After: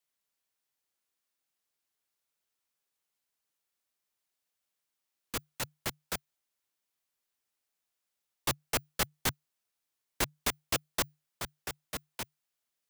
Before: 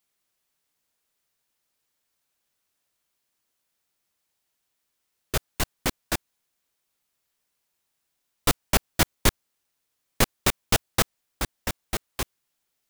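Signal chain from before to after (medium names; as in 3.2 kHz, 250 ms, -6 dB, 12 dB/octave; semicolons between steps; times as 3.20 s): bass shelf 210 Hz -12 dB; frequency shift -150 Hz; trim -7.5 dB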